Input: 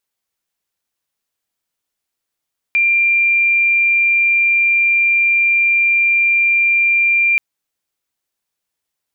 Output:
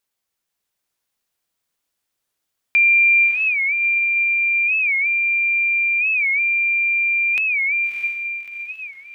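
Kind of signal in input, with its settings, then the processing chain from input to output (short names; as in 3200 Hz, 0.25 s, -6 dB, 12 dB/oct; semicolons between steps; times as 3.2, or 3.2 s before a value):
tone sine 2380 Hz -10.5 dBFS 4.63 s
diffused feedback echo 0.631 s, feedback 47%, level -3 dB; record warp 45 rpm, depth 160 cents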